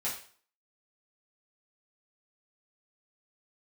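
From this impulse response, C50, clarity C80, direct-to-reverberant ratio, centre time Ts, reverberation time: 6.0 dB, 10.5 dB, -9.5 dB, 31 ms, 0.45 s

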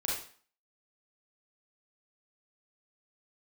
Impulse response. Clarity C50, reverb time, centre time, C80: 1.0 dB, 0.45 s, 50 ms, 6.5 dB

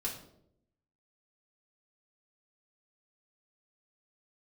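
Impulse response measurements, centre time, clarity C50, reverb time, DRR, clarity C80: 25 ms, 7.0 dB, 0.75 s, -4.0 dB, 10.5 dB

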